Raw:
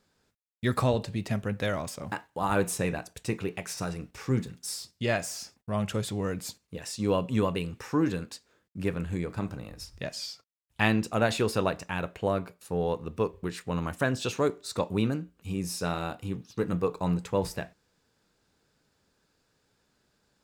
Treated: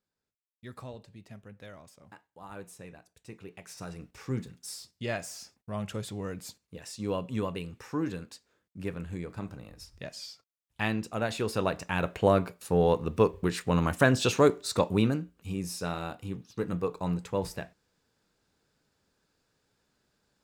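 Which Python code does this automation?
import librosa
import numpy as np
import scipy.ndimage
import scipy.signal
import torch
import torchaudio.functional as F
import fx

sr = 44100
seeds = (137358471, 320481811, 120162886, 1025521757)

y = fx.gain(x, sr, db=fx.line((3.13, -18.0), (4.03, -5.5), (11.32, -5.5), (12.17, 5.0), (14.57, 5.0), (15.74, -3.0)))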